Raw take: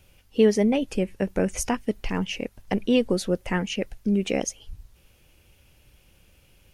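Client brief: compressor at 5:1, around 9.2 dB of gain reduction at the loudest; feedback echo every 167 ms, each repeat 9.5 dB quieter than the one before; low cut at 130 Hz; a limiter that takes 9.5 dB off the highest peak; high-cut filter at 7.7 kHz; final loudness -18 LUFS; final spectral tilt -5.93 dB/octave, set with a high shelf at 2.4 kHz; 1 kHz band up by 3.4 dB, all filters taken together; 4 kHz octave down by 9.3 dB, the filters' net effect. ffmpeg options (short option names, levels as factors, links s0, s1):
-af "highpass=130,lowpass=7700,equalizer=f=1000:t=o:g=6,highshelf=f=2400:g=-7.5,equalizer=f=4000:t=o:g=-8,acompressor=threshold=0.0708:ratio=5,alimiter=limit=0.0841:level=0:latency=1,aecho=1:1:167|334|501|668:0.335|0.111|0.0365|0.012,volume=5.31"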